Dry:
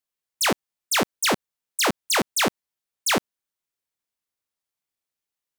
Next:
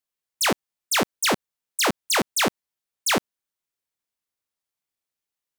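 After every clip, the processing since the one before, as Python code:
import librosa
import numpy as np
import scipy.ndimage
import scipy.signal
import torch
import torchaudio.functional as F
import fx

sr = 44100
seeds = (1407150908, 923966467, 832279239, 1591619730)

y = x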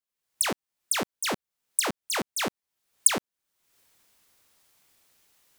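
y = fx.recorder_agc(x, sr, target_db=-17.5, rise_db_per_s=50.0, max_gain_db=30)
y = y * 10.0 ** (-7.5 / 20.0)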